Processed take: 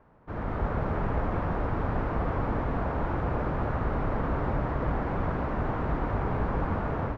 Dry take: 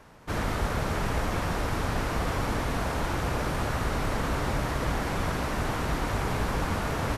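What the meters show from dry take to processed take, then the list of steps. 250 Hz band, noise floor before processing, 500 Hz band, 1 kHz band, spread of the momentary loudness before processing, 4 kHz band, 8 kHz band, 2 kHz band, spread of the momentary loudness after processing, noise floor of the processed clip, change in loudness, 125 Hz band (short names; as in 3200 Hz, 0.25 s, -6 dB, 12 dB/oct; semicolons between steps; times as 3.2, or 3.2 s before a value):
+0.5 dB, -31 dBFS, 0.0 dB, -1.0 dB, 1 LU, -17.0 dB, under -25 dB, -6.0 dB, 1 LU, -35 dBFS, -0.5 dB, +0.5 dB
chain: LPF 1300 Hz 12 dB/oct; AGC gain up to 6.5 dB; gain -6 dB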